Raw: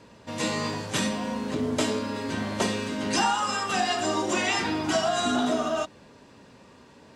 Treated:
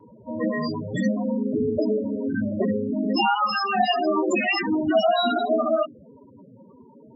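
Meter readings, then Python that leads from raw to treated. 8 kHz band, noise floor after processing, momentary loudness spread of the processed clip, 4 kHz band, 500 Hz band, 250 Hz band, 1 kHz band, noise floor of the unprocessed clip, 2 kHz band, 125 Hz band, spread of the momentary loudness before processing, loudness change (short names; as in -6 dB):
-15.0 dB, -50 dBFS, 6 LU, -0.5 dB, +5.5 dB, +4.5 dB, +3.0 dB, -53 dBFS, +1.5 dB, +2.0 dB, 6 LU, +3.5 dB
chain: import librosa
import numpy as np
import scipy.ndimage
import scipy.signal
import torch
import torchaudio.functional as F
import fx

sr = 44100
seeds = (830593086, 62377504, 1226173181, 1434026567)

y = fx.dynamic_eq(x, sr, hz=890.0, q=5.3, threshold_db=-45.0, ratio=4.0, max_db=-6)
y = fx.hum_notches(y, sr, base_hz=50, count=6)
y = fx.spec_topn(y, sr, count=8)
y = fx.vibrato(y, sr, rate_hz=0.38, depth_cents=6.2)
y = y * librosa.db_to_amplitude(7.5)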